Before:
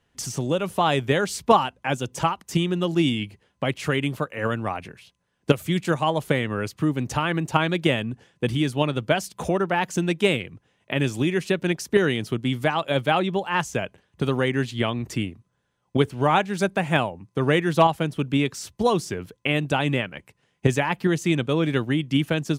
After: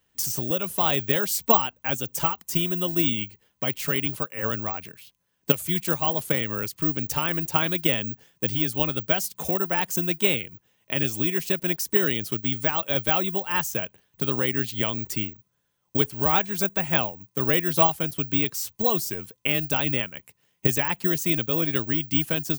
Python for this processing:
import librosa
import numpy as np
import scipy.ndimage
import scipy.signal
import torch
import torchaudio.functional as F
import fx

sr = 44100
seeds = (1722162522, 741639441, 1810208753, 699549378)

y = fx.high_shelf(x, sr, hz=3900.0, db=11.0)
y = (np.kron(y[::2], np.eye(2)[0]) * 2)[:len(y)]
y = y * librosa.db_to_amplitude(-5.5)